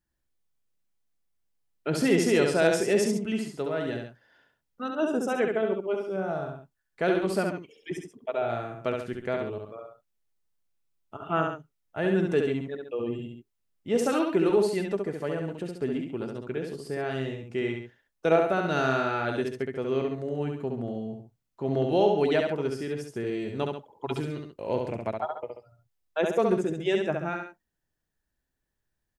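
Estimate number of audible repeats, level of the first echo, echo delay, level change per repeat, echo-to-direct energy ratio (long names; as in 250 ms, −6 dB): 2, −4.0 dB, 68 ms, −6.5 dB, −3.0 dB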